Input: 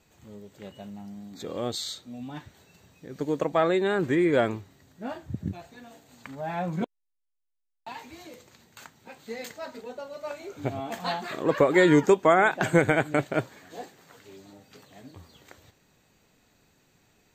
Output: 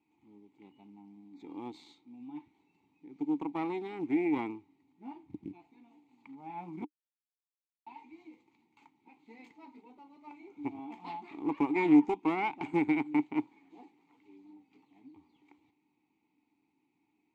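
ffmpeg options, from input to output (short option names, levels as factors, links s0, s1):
-filter_complex "[0:a]aeval=exprs='0.473*(cos(1*acos(clip(val(0)/0.473,-1,1)))-cos(1*PI/2))+0.211*(cos(2*acos(clip(val(0)/0.473,-1,1)))-cos(2*PI/2))+0.0668*(cos(6*acos(clip(val(0)/0.473,-1,1)))-cos(6*PI/2))':c=same,acrusher=bits=6:mode=log:mix=0:aa=0.000001,asplit=3[s0][s1][s2];[s0]bandpass=f=300:t=q:w=8,volume=1[s3];[s1]bandpass=f=870:t=q:w=8,volume=0.501[s4];[s2]bandpass=f=2240:t=q:w=8,volume=0.355[s5];[s3][s4][s5]amix=inputs=3:normalize=0"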